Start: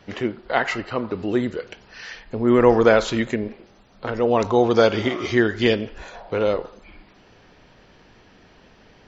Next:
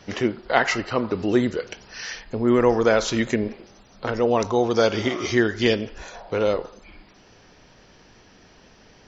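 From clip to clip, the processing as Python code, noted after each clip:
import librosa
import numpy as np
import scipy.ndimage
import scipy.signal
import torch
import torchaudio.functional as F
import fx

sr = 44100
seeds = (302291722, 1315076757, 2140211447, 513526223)

y = fx.peak_eq(x, sr, hz=5700.0, db=9.5, octaves=0.54)
y = fx.rider(y, sr, range_db=3, speed_s=0.5)
y = y * 10.0 ** (-1.0 / 20.0)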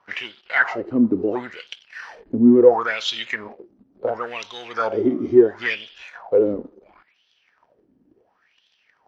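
y = fx.low_shelf(x, sr, hz=130.0, db=11.5)
y = fx.leveller(y, sr, passes=2)
y = fx.wah_lfo(y, sr, hz=0.72, low_hz=250.0, high_hz=3400.0, q=5.9)
y = y * 10.0 ** (4.5 / 20.0)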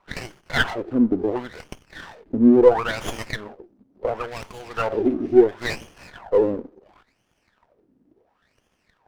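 y = fx.running_max(x, sr, window=9)
y = y * 10.0 ** (-1.0 / 20.0)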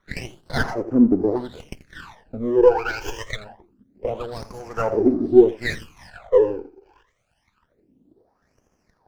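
y = x + 10.0 ** (-15.5 / 20.0) * np.pad(x, (int(84 * sr / 1000.0), 0))[:len(x)]
y = fx.phaser_stages(y, sr, stages=12, low_hz=190.0, high_hz=3500.0, hz=0.26, feedback_pct=35)
y = y * 10.0 ** (1.5 / 20.0)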